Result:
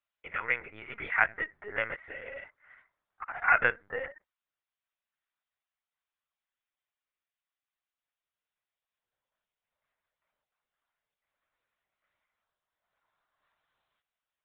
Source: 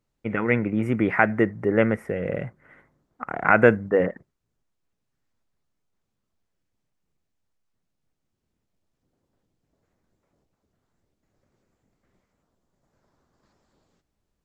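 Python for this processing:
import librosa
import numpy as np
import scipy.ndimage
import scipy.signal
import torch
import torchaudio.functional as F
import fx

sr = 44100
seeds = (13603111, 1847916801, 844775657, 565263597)

y = scipy.signal.sosfilt(scipy.signal.butter(2, 1200.0, 'highpass', fs=sr, output='sos'), x)
y = fx.lpc_vocoder(y, sr, seeds[0], excitation='pitch_kept', order=16)
y = y * librosa.db_to_amplitude(-2.0)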